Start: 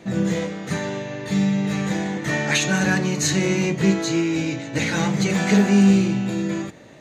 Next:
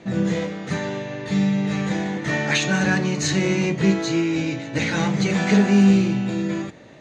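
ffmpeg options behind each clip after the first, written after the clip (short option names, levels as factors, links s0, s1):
-af "lowpass=6000"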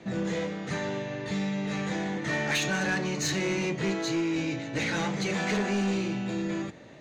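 -filter_complex "[0:a]acrossover=split=290|780[s0][s1][s2];[s0]acompressor=threshold=0.0398:ratio=6[s3];[s3][s1][s2]amix=inputs=3:normalize=0,asoftclip=type=tanh:threshold=0.126,volume=0.668"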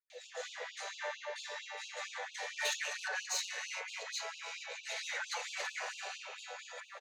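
-filter_complex "[0:a]alimiter=level_in=2.37:limit=0.0631:level=0:latency=1:release=307,volume=0.422,acrossover=split=490|2400[s0][s1][s2];[s2]adelay=100[s3];[s1]adelay=280[s4];[s0][s4][s3]amix=inputs=3:normalize=0,afftfilt=real='re*gte(b*sr/1024,420*pow(2600/420,0.5+0.5*sin(2*PI*4.4*pts/sr)))':imag='im*gte(b*sr/1024,420*pow(2600/420,0.5+0.5*sin(2*PI*4.4*pts/sr)))':win_size=1024:overlap=0.75,volume=1.78"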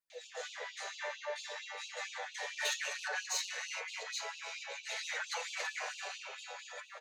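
-af "flanger=delay=5.9:depth=1.6:regen=53:speed=0.55:shape=triangular,volume=1.68"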